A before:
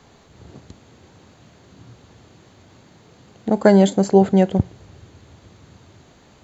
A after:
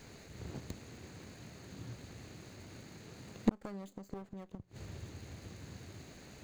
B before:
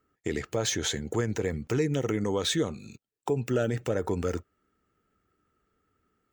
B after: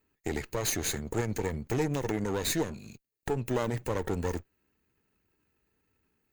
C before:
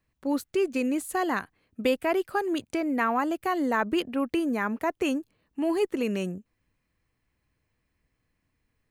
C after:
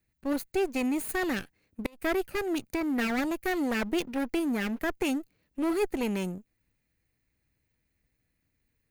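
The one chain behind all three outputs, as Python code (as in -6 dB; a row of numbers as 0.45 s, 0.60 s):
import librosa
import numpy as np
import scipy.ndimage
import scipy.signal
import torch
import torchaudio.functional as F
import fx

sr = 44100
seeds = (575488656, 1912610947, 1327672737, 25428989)

y = fx.lower_of_two(x, sr, delay_ms=0.46)
y = fx.high_shelf(y, sr, hz=12000.0, db=11.0)
y = fx.gate_flip(y, sr, shuts_db=-14.0, range_db=-31)
y = F.gain(torch.from_numpy(y), -1.5).numpy()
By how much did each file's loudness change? -29.0 LU, -2.5 LU, -2.5 LU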